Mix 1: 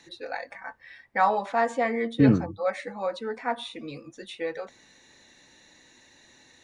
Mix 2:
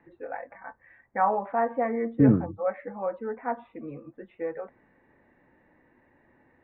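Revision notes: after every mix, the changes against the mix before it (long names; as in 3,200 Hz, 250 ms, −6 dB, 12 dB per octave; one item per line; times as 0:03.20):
master: add Bessel low-pass filter 1,200 Hz, order 8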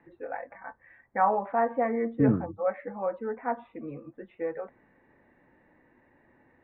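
second voice −4.5 dB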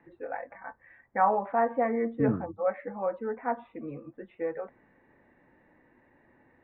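second voice −4.5 dB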